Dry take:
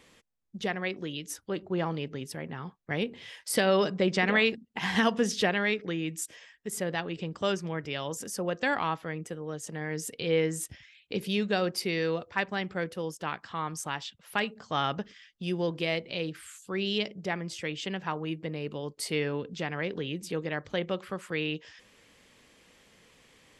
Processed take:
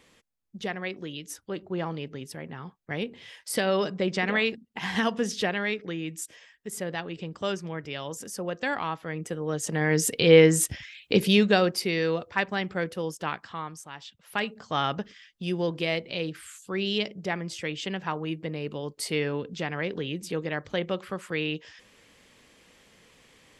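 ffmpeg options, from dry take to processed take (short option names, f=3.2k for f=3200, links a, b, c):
-af "volume=23dB,afade=t=in:st=8.99:d=0.97:silence=0.251189,afade=t=out:st=11.14:d=0.64:silence=0.398107,afade=t=out:st=13.28:d=0.59:silence=0.223872,afade=t=in:st=13.87:d=0.68:silence=0.251189"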